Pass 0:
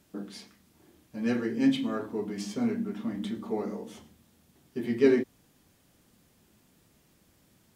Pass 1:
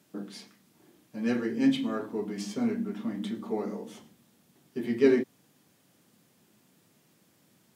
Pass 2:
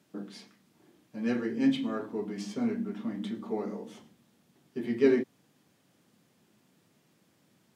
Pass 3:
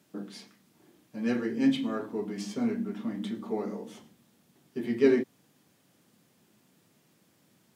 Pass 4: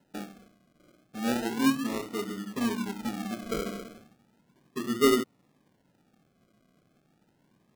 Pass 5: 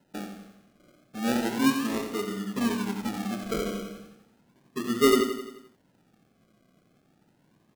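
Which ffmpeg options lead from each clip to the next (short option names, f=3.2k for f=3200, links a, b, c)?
-af "highpass=f=120:w=0.5412,highpass=f=120:w=1.3066"
-af "highshelf=f=8.2k:g=-8.5,volume=-1.5dB"
-af "crystalizer=i=0.5:c=0,volume=1dB"
-af "lowpass=f=1.4k:w=0.5412,lowpass=f=1.4k:w=1.3066,acrusher=samples=38:mix=1:aa=0.000001:lfo=1:lforange=22.8:lforate=0.34"
-af "aecho=1:1:87|174|261|348|435|522:0.398|0.211|0.112|0.0593|0.0314|0.0166,volume=1.5dB"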